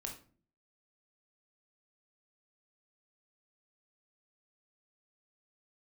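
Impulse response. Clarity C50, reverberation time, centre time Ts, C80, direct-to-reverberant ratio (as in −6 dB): 8.0 dB, 0.45 s, 20 ms, 13.0 dB, 1.0 dB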